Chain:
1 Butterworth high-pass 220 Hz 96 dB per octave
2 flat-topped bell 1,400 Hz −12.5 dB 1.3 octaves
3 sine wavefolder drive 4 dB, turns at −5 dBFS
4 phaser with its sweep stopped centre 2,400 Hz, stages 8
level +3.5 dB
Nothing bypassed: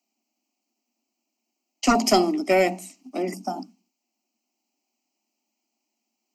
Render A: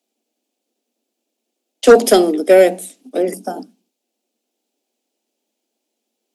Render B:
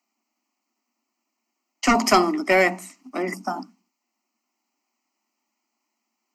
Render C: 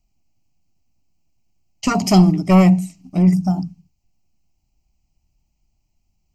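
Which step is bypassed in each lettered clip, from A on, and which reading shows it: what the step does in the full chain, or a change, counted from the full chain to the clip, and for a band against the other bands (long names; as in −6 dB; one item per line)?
4, change in crest factor −5.5 dB
2, 2 kHz band +7.5 dB
1, 250 Hz band +11.0 dB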